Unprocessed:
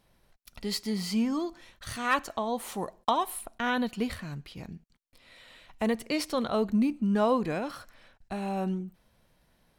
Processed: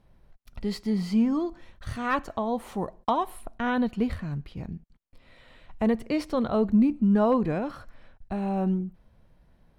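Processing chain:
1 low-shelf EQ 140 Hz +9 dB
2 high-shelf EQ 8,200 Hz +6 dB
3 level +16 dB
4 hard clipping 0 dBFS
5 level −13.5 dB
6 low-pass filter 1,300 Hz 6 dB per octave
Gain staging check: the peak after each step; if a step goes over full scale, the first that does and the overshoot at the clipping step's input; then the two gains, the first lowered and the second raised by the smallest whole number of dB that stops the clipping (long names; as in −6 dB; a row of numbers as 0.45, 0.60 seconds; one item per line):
−12.5, −12.5, +3.5, 0.0, −13.5, −13.5 dBFS
step 3, 3.5 dB
step 3 +12 dB, step 5 −9.5 dB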